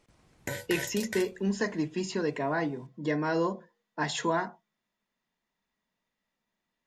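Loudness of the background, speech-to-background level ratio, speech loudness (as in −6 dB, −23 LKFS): −38.5 LKFS, 7.5 dB, −31.0 LKFS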